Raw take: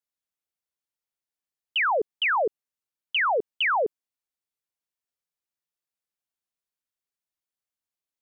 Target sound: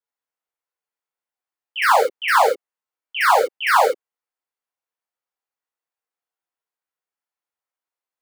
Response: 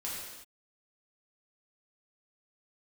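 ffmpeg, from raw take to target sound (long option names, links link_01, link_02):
-filter_complex "[0:a]acrossover=split=360 2100:gain=0.141 1 0.251[link_01][link_02][link_03];[link_01][link_02][link_03]amix=inputs=3:normalize=0,asplit=2[link_04][link_05];[link_05]acrusher=bits=3:mix=0:aa=0.000001,volume=-9dB[link_06];[link_04][link_06]amix=inputs=2:normalize=0[link_07];[1:a]atrim=start_sample=2205,atrim=end_sample=3528[link_08];[link_07][link_08]afir=irnorm=-1:irlink=0,volume=6.5dB"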